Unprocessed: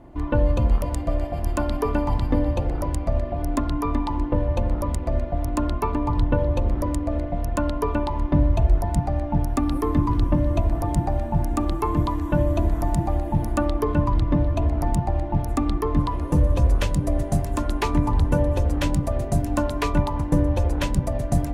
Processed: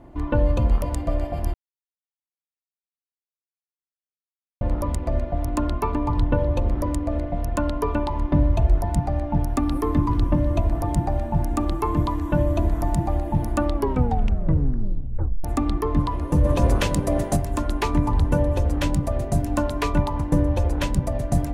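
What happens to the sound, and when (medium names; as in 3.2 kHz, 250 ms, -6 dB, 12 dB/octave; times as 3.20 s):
1.54–4.61 s: mute
13.74 s: tape stop 1.70 s
16.44–17.35 s: spectral peaks clipped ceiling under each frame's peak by 12 dB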